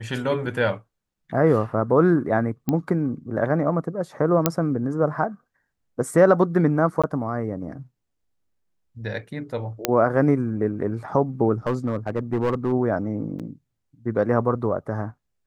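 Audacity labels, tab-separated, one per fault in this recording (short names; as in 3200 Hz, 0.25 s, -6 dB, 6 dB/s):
2.690000	2.690000	pop -11 dBFS
4.460000	4.460000	pop -2 dBFS
7.020000	7.040000	gap 16 ms
9.850000	9.850000	pop -3 dBFS
11.670000	12.730000	clipped -17 dBFS
13.390000	13.400000	gap 6.9 ms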